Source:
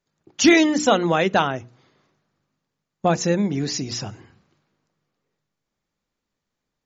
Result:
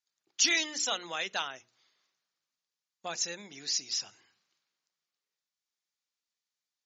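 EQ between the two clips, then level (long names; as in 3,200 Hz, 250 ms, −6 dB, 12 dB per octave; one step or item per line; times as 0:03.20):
resonant band-pass 5,600 Hz, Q 1.1
high-shelf EQ 5,800 Hz −4 dB
0.0 dB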